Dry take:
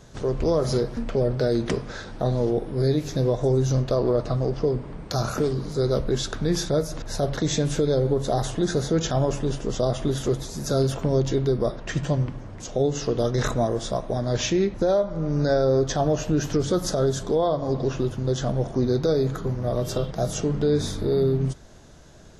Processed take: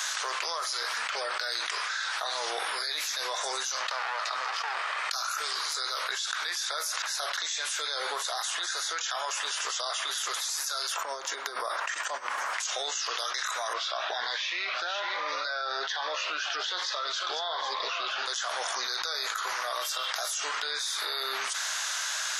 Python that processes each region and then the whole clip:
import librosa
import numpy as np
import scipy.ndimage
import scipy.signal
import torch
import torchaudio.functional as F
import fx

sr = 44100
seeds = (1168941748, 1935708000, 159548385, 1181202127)

y = fx.chain(x, sr, fx.lower_of_two(delay_ms=1.6),
    fx.air_absorb(metres=60.0),
    fx.env_flatten(amount_pct=100), at=(3.8, 5.12))
y = fx.chain(y, sr, fx.peak_eq(hz=3700.0, db=-13.5, octaves=2.4),
    fx.over_compress(threshold_db=-34.0, ratio=-1.0), at=(10.96, 12.54))
y = fx.chain(y, sr, fx.lowpass(hz=4200.0, slope=24),
    fx.echo_single(ms=498, db=-13.5),
    fx.notch_cascade(direction='rising', hz=1.2), at=(13.73, 18.26))
y = scipy.signal.sosfilt(scipy.signal.butter(4, 1200.0, 'highpass', fs=sr, output='sos'), y)
y = fx.env_flatten(y, sr, amount_pct=100)
y = y * librosa.db_to_amplitude(-6.5)